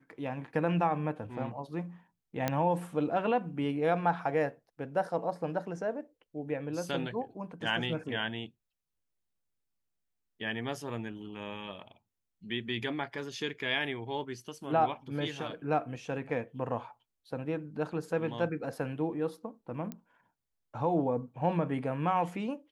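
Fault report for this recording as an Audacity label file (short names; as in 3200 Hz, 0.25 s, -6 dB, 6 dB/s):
2.480000	2.480000	pop -14 dBFS
19.920000	19.920000	pop -25 dBFS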